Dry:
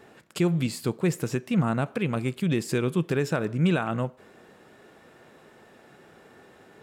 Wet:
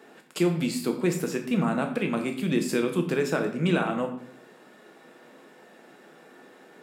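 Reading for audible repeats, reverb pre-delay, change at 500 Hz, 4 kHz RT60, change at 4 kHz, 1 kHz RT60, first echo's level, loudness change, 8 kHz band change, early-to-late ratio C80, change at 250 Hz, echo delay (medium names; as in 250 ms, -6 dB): no echo, 6 ms, +1.5 dB, 0.50 s, +1.5 dB, 0.55 s, no echo, 0.0 dB, +1.5 dB, 12.5 dB, +0.5 dB, no echo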